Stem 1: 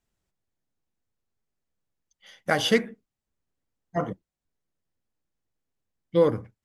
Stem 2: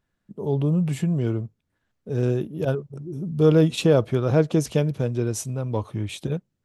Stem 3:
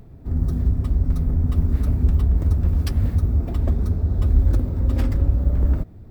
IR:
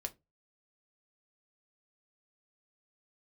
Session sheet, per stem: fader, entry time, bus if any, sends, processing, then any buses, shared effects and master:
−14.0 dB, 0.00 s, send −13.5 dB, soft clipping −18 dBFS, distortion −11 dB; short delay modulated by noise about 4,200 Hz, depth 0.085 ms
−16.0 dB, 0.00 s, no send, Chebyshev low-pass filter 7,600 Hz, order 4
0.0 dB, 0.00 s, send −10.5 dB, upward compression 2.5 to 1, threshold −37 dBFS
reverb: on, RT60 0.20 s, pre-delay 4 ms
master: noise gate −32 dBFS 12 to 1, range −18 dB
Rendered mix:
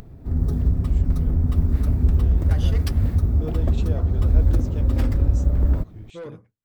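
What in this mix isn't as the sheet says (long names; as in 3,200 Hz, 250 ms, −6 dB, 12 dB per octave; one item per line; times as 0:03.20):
stem 1: missing short delay modulated by noise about 4,200 Hz, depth 0.085 ms
stem 3: send off
master: missing noise gate −32 dBFS 12 to 1, range −18 dB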